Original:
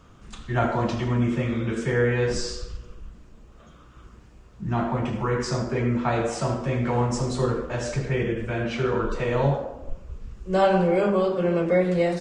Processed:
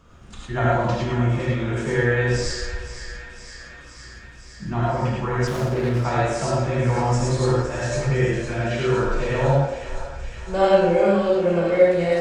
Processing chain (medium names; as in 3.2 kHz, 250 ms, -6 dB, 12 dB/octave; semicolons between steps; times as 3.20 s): thinning echo 510 ms, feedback 78%, high-pass 870 Hz, level -10.5 dB; gated-style reverb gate 130 ms rising, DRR -3.5 dB; 5.47–6.04 s: sliding maximum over 9 samples; trim -2 dB